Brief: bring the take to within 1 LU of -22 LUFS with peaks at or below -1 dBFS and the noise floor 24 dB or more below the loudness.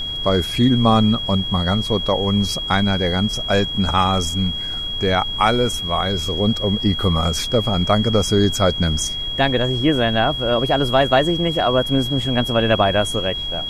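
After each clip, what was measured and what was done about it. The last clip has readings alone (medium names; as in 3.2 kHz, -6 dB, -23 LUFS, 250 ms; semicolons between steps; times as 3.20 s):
steady tone 3.3 kHz; tone level -24 dBFS; noise floor -26 dBFS; noise floor target -43 dBFS; loudness -18.5 LUFS; peak level -2.0 dBFS; loudness target -22.0 LUFS
-> band-stop 3.3 kHz, Q 30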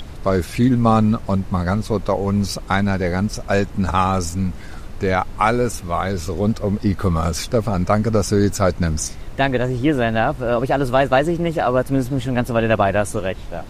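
steady tone not found; noise floor -33 dBFS; noise floor target -44 dBFS
-> noise print and reduce 11 dB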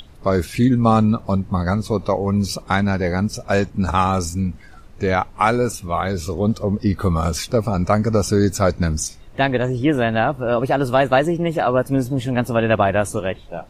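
noise floor -42 dBFS; noise floor target -44 dBFS
-> noise print and reduce 6 dB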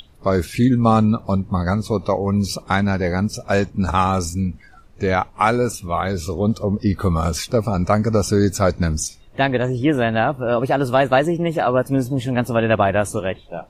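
noise floor -46 dBFS; loudness -19.5 LUFS; peak level -3.0 dBFS; loudness target -22.0 LUFS
-> trim -2.5 dB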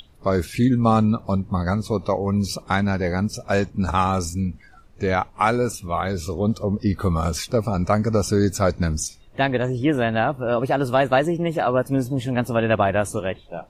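loudness -22.0 LUFS; peak level -5.5 dBFS; noise floor -48 dBFS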